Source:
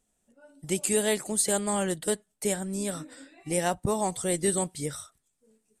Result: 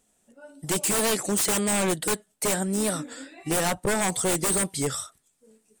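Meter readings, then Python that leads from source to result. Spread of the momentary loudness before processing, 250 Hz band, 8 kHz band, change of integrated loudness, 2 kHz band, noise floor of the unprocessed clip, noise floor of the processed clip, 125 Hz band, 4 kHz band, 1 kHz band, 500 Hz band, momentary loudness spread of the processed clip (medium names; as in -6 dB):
12 LU, +3.0 dB, +3.5 dB, +3.5 dB, +6.0 dB, -76 dBFS, -70 dBFS, +2.5 dB, +6.0 dB, +3.0 dB, +1.0 dB, 11 LU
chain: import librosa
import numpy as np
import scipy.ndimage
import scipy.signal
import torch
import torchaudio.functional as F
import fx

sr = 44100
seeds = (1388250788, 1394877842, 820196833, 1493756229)

y = fx.low_shelf(x, sr, hz=100.0, db=-9.5)
y = 10.0 ** (-26.5 / 20.0) * (np.abs((y / 10.0 ** (-26.5 / 20.0) + 3.0) % 4.0 - 2.0) - 1.0)
y = fx.record_warp(y, sr, rpm=33.33, depth_cents=100.0)
y = y * 10.0 ** (8.0 / 20.0)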